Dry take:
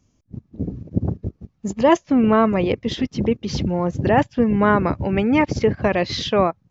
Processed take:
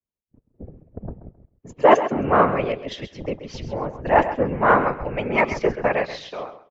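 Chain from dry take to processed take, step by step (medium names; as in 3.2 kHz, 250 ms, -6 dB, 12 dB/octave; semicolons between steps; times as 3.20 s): fade out at the end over 0.87 s; de-hum 408.7 Hz, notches 10; whisper effect; in parallel at -3.5 dB: hard clipper -10 dBFS, distortion -17 dB; on the sum: high-order bell 1.1 kHz +8.5 dB 2.9 oct; on a send: feedback delay 133 ms, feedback 29%, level -10 dB; on the sum: three bands expanded up and down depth 70%; trim -13 dB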